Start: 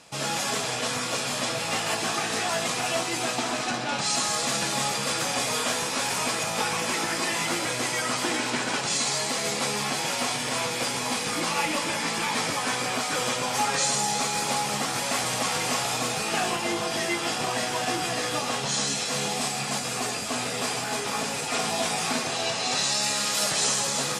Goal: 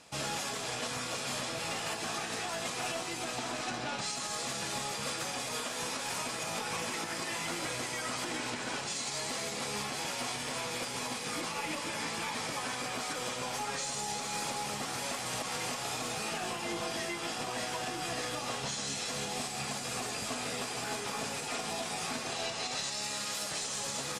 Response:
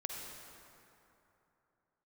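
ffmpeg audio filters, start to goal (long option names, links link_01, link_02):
-filter_complex "[0:a]asplit=2[link_01][link_02];[link_02]asetrate=22050,aresample=44100,atempo=2,volume=-13dB[link_03];[link_01][link_03]amix=inputs=2:normalize=0,aeval=exprs='0.299*(cos(1*acos(clip(val(0)/0.299,-1,1)))-cos(1*PI/2))+0.015*(cos(2*acos(clip(val(0)/0.299,-1,1)))-cos(2*PI/2))+0.015*(cos(3*acos(clip(val(0)/0.299,-1,1)))-cos(3*PI/2))':channel_layout=same,alimiter=limit=-22dB:level=0:latency=1:release=224,volume=-3.5dB"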